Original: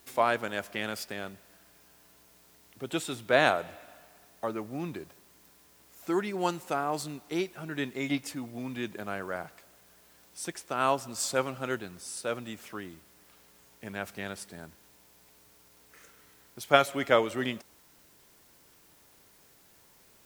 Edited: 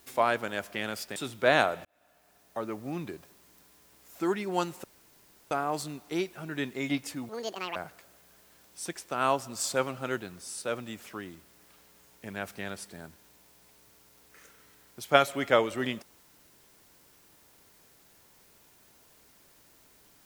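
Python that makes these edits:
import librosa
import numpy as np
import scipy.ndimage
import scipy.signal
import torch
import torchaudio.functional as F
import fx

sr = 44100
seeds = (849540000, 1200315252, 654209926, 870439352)

y = fx.edit(x, sr, fx.cut(start_s=1.16, length_s=1.87),
    fx.fade_in_span(start_s=3.72, length_s=0.92),
    fx.insert_room_tone(at_s=6.71, length_s=0.67),
    fx.speed_span(start_s=8.49, length_s=0.86, speed=1.84), tone=tone)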